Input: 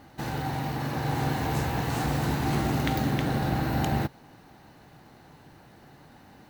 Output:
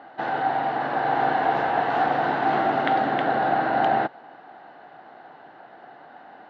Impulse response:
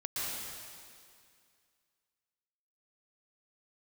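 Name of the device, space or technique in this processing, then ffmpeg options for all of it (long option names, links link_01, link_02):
phone earpiece: -af "highpass=390,equalizer=frequency=710:width_type=q:width=4:gain=10,equalizer=frequency=1500:width_type=q:width=4:gain=5,equalizer=frequency=2400:width_type=q:width=4:gain=-7,lowpass=frequency=3100:width=0.5412,lowpass=frequency=3100:width=1.3066,volume=6dB"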